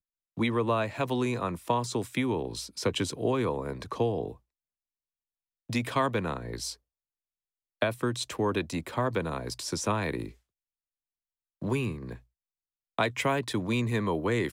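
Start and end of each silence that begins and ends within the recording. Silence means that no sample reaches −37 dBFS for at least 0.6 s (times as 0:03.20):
0:04.32–0:05.70
0:06.73–0:07.82
0:10.28–0:11.62
0:12.16–0:12.99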